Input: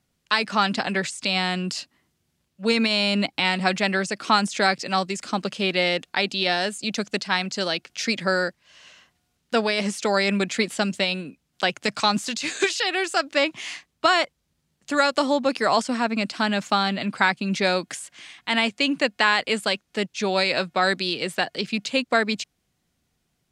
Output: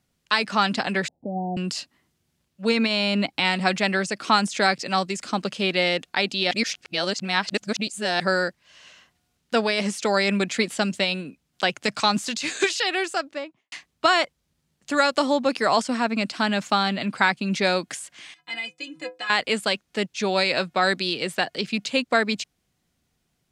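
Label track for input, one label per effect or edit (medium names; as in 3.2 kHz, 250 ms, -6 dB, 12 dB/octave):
1.080000	1.570000	steep low-pass 850 Hz 96 dB/octave
2.690000	3.270000	treble shelf 5.5 kHz -7.5 dB
6.510000	8.200000	reverse
12.920000	13.720000	studio fade out
18.340000	19.300000	inharmonic resonator 150 Hz, decay 0.29 s, inharmonicity 0.03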